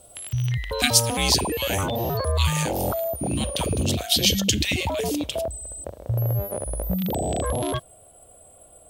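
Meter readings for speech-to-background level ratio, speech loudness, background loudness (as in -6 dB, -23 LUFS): 2.5 dB, -24.0 LUFS, -26.5 LUFS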